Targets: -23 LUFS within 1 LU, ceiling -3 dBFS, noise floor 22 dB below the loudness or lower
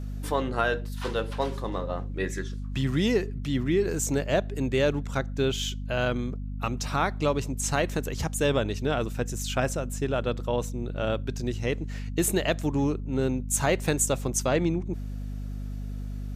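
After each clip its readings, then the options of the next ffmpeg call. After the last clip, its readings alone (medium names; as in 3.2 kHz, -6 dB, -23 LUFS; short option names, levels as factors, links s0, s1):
hum 50 Hz; highest harmonic 250 Hz; hum level -31 dBFS; loudness -28.0 LUFS; peak level -10.0 dBFS; loudness target -23.0 LUFS
-> -af "bandreject=f=50:t=h:w=6,bandreject=f=100:t=h:w=6,bandreject=f=150:t=h:w=6,bandreject=f=200:t=h:w=6,bandreject=f=250:t=h:w=6"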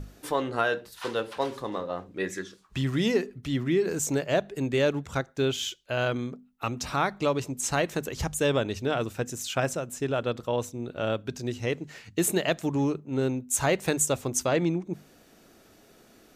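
hum not found; loudness -28.5 LUFS; peak level -9.5 dBFS; loudness target -23.0 LUFS
-> -af "volume=1.88"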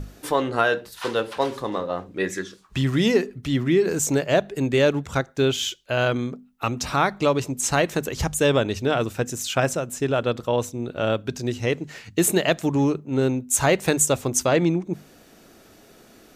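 loudness -23.0 LUFS; peak level -4.0 dBFS; noise floor -52 dBFS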